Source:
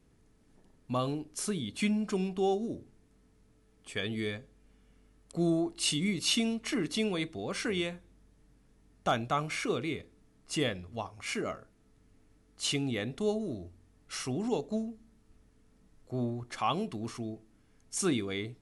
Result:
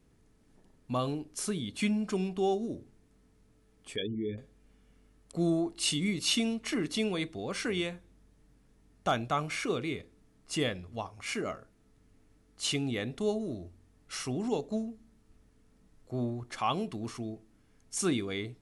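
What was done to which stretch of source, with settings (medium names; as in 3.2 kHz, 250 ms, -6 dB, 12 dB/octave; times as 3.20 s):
3.96–4.38 s: resonances exaggerated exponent 3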